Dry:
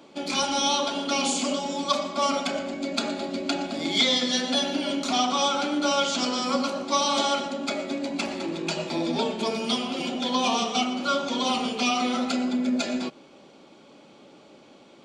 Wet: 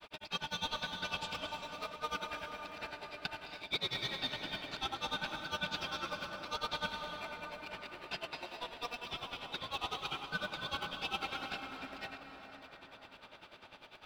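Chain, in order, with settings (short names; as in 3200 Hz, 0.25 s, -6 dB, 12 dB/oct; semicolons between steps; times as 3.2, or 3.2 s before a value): HPF 1500 Hz 12 dB/oct; upward compressor, threshold -38 dBFS; air absorption 340 m; in parallel at -8 dB: sample-and-hold 28×; on the sum: wide varispeed 1.07×; grains 85 ms, grains 10/s, spray 14 ms, pitch spread up and down by 0 st; reverb RT60 4.9 s, pre-delay 0.204 s, DRR 6.5 dB; reverse; compressor 4:1, threshold -35 dBFS, peak gain reduction 9 dB; reverse; gain +2 dB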